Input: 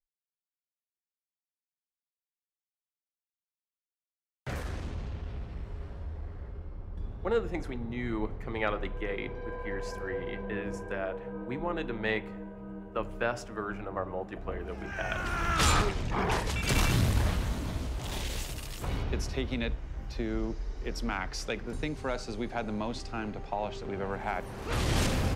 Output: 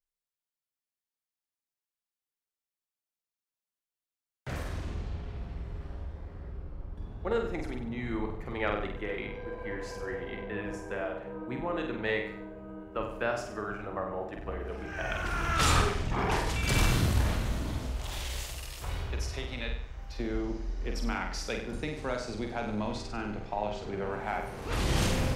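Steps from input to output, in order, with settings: 17.9–20.2 bell 230 Hz -10 dB 1.8 oct; flutter echo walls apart 8.2 m, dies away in 0.56 s; gain -1.5 dB

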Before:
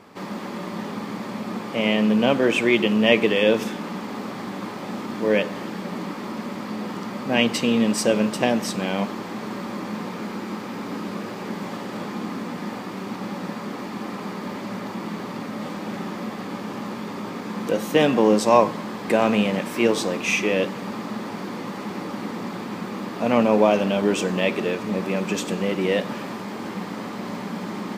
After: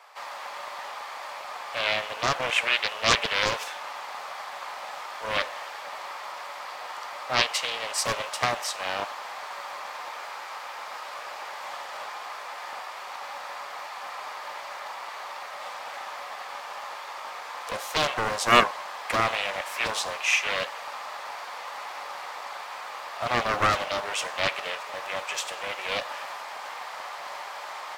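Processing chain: steep high-pass 630 Hz 36 dB/oct; Doppler distortion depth 0.73 ms

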